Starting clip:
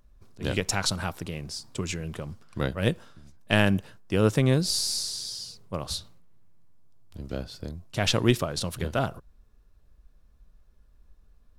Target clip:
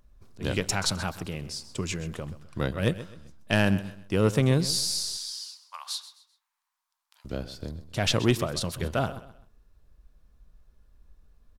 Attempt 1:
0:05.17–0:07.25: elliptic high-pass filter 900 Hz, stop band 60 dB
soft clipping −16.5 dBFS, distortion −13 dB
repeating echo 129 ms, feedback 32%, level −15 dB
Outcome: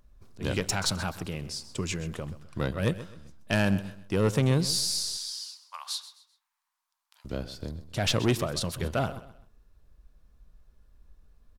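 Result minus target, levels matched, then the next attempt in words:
soft clipping: distortion +8 dB
0:05.17–0:07.25: elliptic high-pass filter 900 Hz, stop band 60 dB
soft clipping −10 dBFS, distortion −21 dB
repeating echo 129 ms, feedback 32%, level −15 dB

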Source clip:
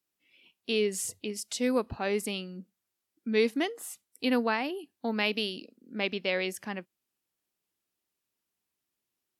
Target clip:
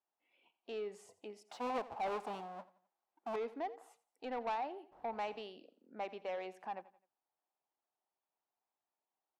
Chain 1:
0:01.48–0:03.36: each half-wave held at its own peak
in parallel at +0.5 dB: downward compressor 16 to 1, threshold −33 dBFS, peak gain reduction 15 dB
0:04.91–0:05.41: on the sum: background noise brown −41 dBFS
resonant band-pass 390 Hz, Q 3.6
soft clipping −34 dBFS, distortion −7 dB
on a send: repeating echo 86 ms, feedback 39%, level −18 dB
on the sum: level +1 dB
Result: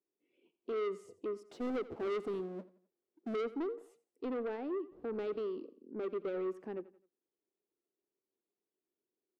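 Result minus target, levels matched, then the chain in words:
1,000 Hz band −11.0 dB; downward compressor: peak gain reduction −8 dB
0:01.48–0:03.36: each half-wave held at its own peak
in parallel at +0.5 dB: downward compressor 16 to 1, threshold −41.5 dBFS, peak gain reduction 23 dB
0:04.91–0:05.41: on the sum: background noise brown −41 dBFS
resonant band-pass 800 Hz, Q 3.6
soft clipping −34 dBFS, distortion −12 dB
on a send: repeating echo 86 ms, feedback 39%, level −18 dB
on the sum: level +1 dB

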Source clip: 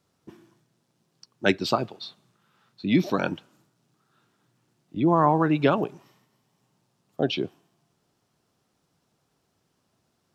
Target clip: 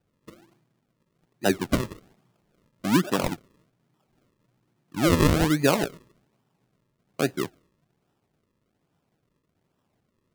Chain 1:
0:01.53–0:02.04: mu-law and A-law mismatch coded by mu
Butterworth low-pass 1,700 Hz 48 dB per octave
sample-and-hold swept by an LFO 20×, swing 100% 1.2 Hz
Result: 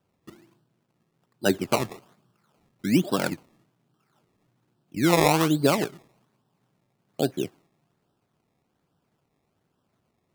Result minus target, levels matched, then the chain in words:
sample-and-hold swept by an LFO: distortion −5 dB
0:01.53–0:02.04: mu-law and A-law mismatch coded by mu
Butterworth low-pass 1,700 Hz 48 dB per octave
sample-and-hold swept by an LFO 40×, swing 100% 1.2 Hz

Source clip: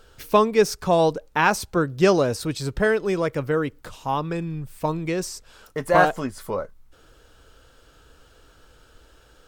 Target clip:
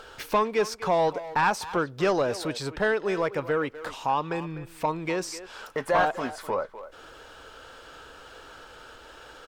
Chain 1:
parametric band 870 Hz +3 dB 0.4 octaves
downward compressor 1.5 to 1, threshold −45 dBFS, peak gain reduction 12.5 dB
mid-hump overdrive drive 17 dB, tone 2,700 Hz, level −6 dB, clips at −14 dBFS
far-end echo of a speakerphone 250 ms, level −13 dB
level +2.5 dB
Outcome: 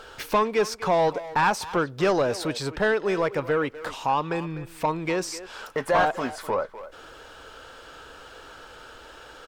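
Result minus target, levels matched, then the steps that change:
downward compressor: peak gain reduction −3 dB
change: downward compressor 1.5 to 1, threshold −53.5 dBFS, peak gain reduction 15 dB

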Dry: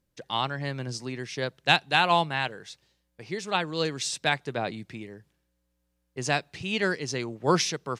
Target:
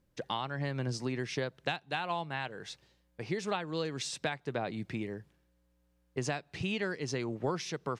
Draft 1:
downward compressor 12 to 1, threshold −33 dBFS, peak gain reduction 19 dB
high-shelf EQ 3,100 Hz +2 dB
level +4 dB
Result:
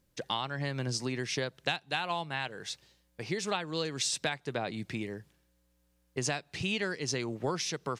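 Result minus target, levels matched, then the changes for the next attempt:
8,000 Hz band +6.0 dB
change: high-shelf EQ 3,100 Hz −7.5 dB

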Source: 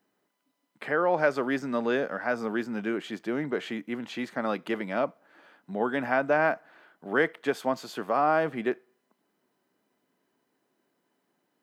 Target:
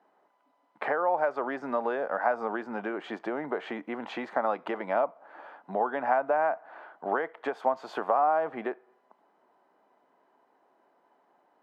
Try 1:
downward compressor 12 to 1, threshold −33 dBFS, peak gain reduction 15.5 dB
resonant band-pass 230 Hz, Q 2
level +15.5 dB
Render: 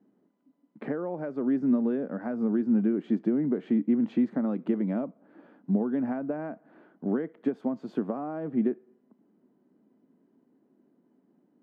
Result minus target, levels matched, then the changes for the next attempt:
1,000 Hz band −16.5 dB
change: resonant band-pass 820 Hz, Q 2

